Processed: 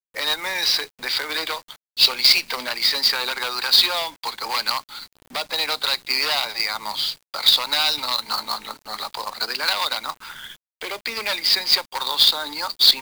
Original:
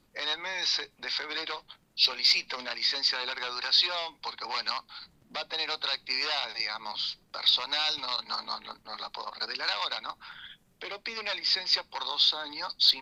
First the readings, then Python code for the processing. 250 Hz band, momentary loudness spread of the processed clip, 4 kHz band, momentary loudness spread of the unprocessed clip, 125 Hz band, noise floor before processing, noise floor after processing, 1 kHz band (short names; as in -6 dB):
+9.0 dB, 16 LU, +8.0 dB, 15 LU, n/a, -66 dBFS, under -85 dBFS, +8.5 dB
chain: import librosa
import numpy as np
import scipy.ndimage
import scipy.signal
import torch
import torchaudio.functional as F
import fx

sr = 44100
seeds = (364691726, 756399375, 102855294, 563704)

y = fx.hum_notches(x, sr, base_hz=60, count=3)
y = fx.quant_companded(y, sr, bits=4)
y = F.gain(torch.from_numpy(y), 8.0).numpy()